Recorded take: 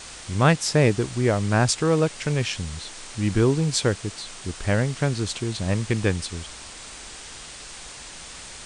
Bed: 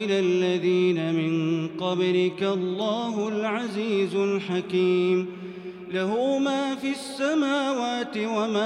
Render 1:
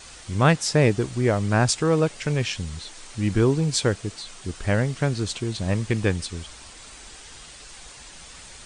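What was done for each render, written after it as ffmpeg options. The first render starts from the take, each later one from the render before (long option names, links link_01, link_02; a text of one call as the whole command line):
ffmpeg -i in.wav -af "afftdn=noise_reduction=6:noise_floor=-41" out.wav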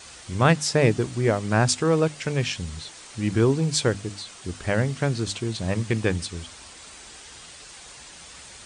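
ffmpeg -i in.wav -af "highpass=61,bandreject=frequency=50:width_type=h:width=6,bandreject=frequency=100:width_type=h:width=6,bandreject=frequency=150:width_type=h:width=6,bandreject=frequency=200:width_type=h:width=6,bandreject=frequency=250:width_type=h:width=6,bandreject=frequency=300:width_type=h:width=6" out.wav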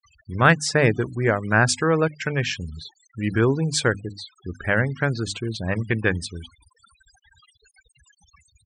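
ffmpeg -i in.wav -af "afftfilt=real='re*gte(hypot(re,im),0.0178)':imag='im*gte(hypot(re,im),0.0178)':win_size=1024:overlap=0.75,equalizer=frequency=1600:width=1.8:gain=9" out.wav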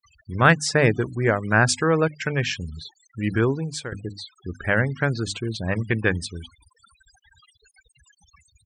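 ffmpeg -i in.wav -filter_complex "[0:a]asplit=2[link_01][link_02];[link_01]atrim=end=3.92,asetpts=PTS-STARTPTS,afade=type=out:start_time=3.32:duration=0.6:silence=0.158489[link_03];[link_02]atrim=start=3.92,asetpts=PTS-STARTPTS,afade=type=in:duration=0.004:curve=hsin:silence=0.158489[link_04];[link_03][link_04]concat=n=2:v=0:a=1" out.wav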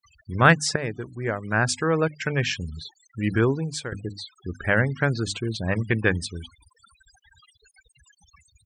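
ffmpeg -i in.wav -filter_complex "[0:a]asplit=2[link_01][link_02];[link_01]atrim=end=0.76,asetpts=PTS-STARTPTS,afade=type=out:start_time=0.756:duration=0.004:curve=hsin:silence=0.223872[link_03];[link_02]atrim=start=0.76,asetpts=PTS-STARTPTS,afade=type=in:duration=1.71:silence=0.223872[link_04];[link_03][link_04]concat=n=2:v=0:a=1" out.wav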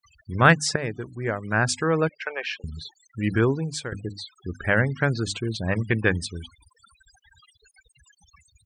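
ffmpeg -i in.wav -filter_complex "[0:a]asettb=1/sr,asplit=3[link_01][link_02][link_03];[link_01]atrim=end=2.094[link_04];[link_02]atrim=start=2.09:end=2.64,asetpts=PTS-STARTPTS,afade=type=in:duration=0.004:curve=qsin,afade=type=out:start_time=0.546:duration=0.004:curve=qsin,highpass=frequency=500:width=0.5412,highpass=frequency=500:width=1.3066,equalizer=frequency=800:width_type=q:width=4:gain=3,equalizer=frequency=1900:width_type=q:width=4:gain=-4,equalizer=frequency=3400:width_type=q:width=4:gain=-7,lowpass=frequency=4200:width=0.5412,lowpass=frequency=4200:width=1.3066[link_05];[link_03]atrim=start=2.636[link_06];[link_04][link_05]acrossfade=duration=0.004:curve1=hsin:curve2=qsin[link_07];[link_07][link_06]acrossfade=duration=0.004:curve1=qsin:curve2=hsin" out.wav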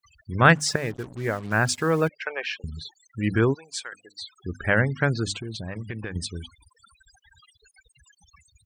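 ffmpeg -i in.wav -filter_complex "[0:a]asettb=1/sr,asplit=3[link_01][link_02][link_03];[link_01]atrim=end=0.554[link_04];[link_02]atrim=start=0.55:end=2.08,asetpts=PTS-STARTPTS,afade=type=in:duration=0.004:curve=qsin,afade=type=out:start_time=1.526:duration=0.004:curve=qsin,acrusher=bits=6:mix=0:aa=0.5[link_05];[link_03]atrim=start=2.076[link_06];[link_04][link_05]acrossfade=duration=0.004:curve1=hsin:curve2=qsin[link_07];[link_07][link_06]acrossfade=duration=0.004:curve1=qsin:curve2=hsin,asplit=3[link_08][link_09][link_10];[link_08]afade=type=out:start_time=3.53:duration=0.02[link_11];[link_09]highpass=1000,afade=type=in:start_time=3.53:duration=0.02,afade=type=out:start_time=4.21:duration=0.02[link_12];[link_10]afade=type=in:start_time=4.21:duration=0.02[link_13];[link_11][link_12][link_13]amix=inputs=3:normalize=0,asettb=1/sr,asplit=3[link_14][link_15][link_16];[link_14]atrim=end=5.324[link_17];[link_15]atrim=start=5.32:end=6.16,asetpts=PTS-STARTPTS,afade=type=in:duration=0.004:curve=qsin,afade=type=out:start_time=0.836:duration=0.004:curve=qsin,acompressor=threshold=-30dB:ratio=6:attack=3.2:release=140:knee=1:detection=peak[link_18];[link_16]atrim=start=6.156[link_19];[link_17][link_18]acrossfade=duration=0.004:curve1=hsin:curve2=qsin[link_20];[link_20][link_19]acrossfade=duration=0.004:curve1=qsin:curve2=hsin" out.wav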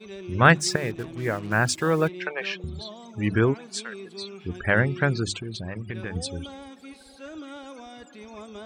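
ffmpeg -i in.wav -i bed.wav -filter_complex "[1:a]volume=-16.5dB[link_01];[0:a][link_01]amix=inputs=2:normalize=0" out.wav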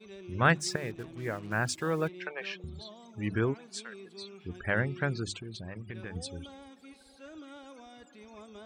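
ffmpeg -i in.wav -af "volume=-8dB" out.wav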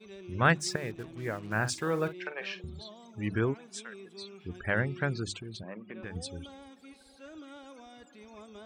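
ffmpeg -i in.wav -filter_complex "[0:a]asettb=1/sr,asplit=3[link_01][link_02][link_03];[link_01]atrim=end=1.514[link_04];[link_02]atrim=start=1.51:end=2.71,asetpts=PTS-STARTPTS,afade=type=in:duration=0.004:curve=qsin,afade=type=out:start_time=1.196:duration=0.004:curve=qsin,asplit=2[link_05][link_06];[link_06]adelay=47,volume=-12dB[link_07];[link_05][link_07]amix=inputs=2:normalize=0,atrim=end_sample=52920[link_08];[link_03]atrim=start=2.706[link_09];[link_04][link_08]acrossfade=duration=0.004:curve1=hsin:curve2=qsin[link_10];[link_10][link_09]acrossfade=duration=0.004:curve1=qsin:curve2=hsin,asettb=1/sr,asplit=3[link_11][link_12][link_13];[link_11]atrim=end=3.404[link_14];[link_12]atrim=start=3.4:end=4.17,asetpts=PTS-STARTPTS,afade=type=in:duration=0.004:curve=qsin,afade=type=out:start_time=0.766:duration=0.004:curve=qsin,bandreject=frequency=4400:width=5.6[link_15];[link_13]atrim=start=4.166[link_16];[link_14][link_15]acrossfade=duration=0.004:curve1=hsin:curve2=qsin[link_17];[link_17][link_16]acrossfade=duration=0.004:curve1=qsin:curve2=hsin,asettb=1/sr,asplit=3[link_18][link_19][link_20];[link_18]atrim=end=5.634[link_21];[link_19]atrim=start=5.63:end=6.03,asetpts=PTS-STARTPTS,afade=type=in:duration=0.004:curve=qsin,afade=type=out:start_time=0.396:duration=0.004:curve=qsin,highpass=frequency=200:width=0.5412,highpass=frequency=200:width=1.3066,equalizer=frequency=200:width_type=q:width=4:gain=5,equalizer=frequency=570:width_type=q:width=4:gain=5,equalizer=frequency=1100:width_type=q:width=4:gain=6,equalizer=frequency=1700:width_type=q:width=4:gain=-3,lowpass=frequency=3000:width=0.5412,lowpass=frequency=3000:width=1.3066[link_22];[link_20]atrim=start=6.026[link_23];[link_21][link_22]acrossfade=duration=0.004:curve1=hsin:curve2=qsin[link_24];[link_24][link_23]acrossfade=duration=0.004:curve1=qsin:curve2=hsin" out.wav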